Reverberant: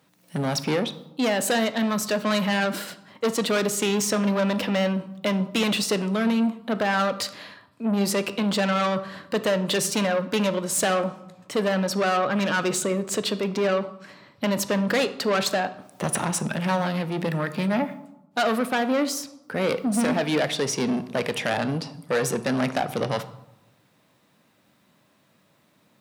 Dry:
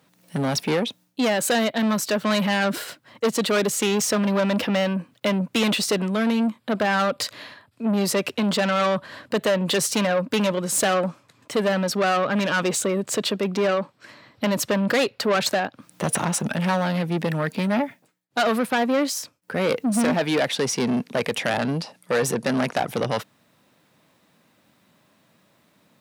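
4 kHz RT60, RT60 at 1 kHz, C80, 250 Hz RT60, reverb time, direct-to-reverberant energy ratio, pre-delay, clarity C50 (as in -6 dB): 0.55 s, 0.90 s, 17.0 dB, 1.1 s, 0.90 s, 11.0 dB, 14 ms, 14.0 dB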